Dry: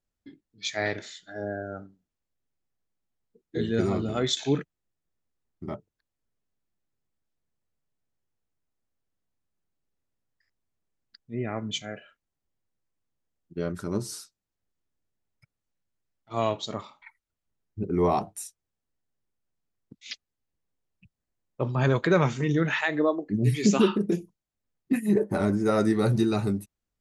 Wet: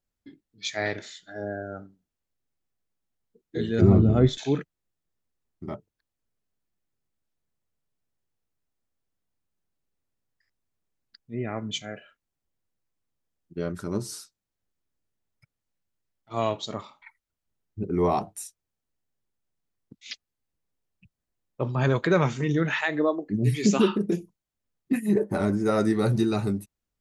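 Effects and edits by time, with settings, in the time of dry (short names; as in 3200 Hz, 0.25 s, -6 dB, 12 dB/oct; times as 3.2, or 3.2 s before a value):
3.81–4.38 tilt -4.5 dB/oct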